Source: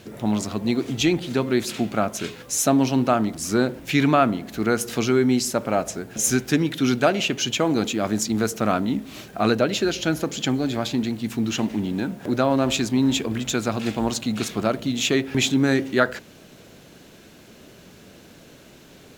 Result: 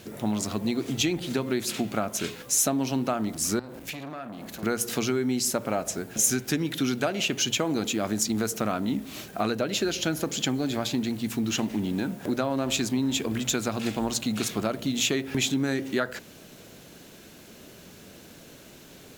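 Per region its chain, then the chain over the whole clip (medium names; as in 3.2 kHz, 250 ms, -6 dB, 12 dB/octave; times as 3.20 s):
3.59–4.63 s: compression 16:1, threshold -29 dBFS + flutter echo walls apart 8.7 m, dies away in 0.23 s + transformer saturation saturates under 1.4 kHz
whole clip: compression, threshold -21 dBFS; treble shelf 7.2 kHz +7.5 dB; hum notches 60/120 Hz; trim -1.5 dB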